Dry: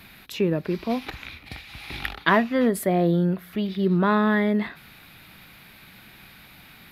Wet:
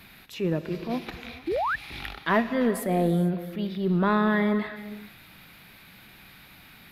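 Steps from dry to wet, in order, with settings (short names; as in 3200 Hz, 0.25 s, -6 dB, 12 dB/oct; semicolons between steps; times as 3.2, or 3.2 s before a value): transient shaper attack -7 dB, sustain -2 dB; non-linear reverb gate 0.48 s flat, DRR 10.5 dB; painted sound rise, 1.47–1.76, 300–1900 Hz -24 dBFS; gain -2 dB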